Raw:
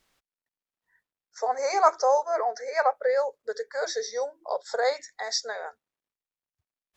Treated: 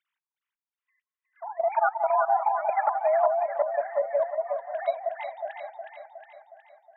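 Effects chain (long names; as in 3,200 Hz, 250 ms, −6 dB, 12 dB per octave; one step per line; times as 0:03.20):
three sine waves on the formant tracks
frequency shifter +120 Hz
output level in coarse steps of 13 dB
delay that swaps between a low-pass and a high-pass 182 ms, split 820 Hz, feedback 74%, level −2.5 dB
level +4 dB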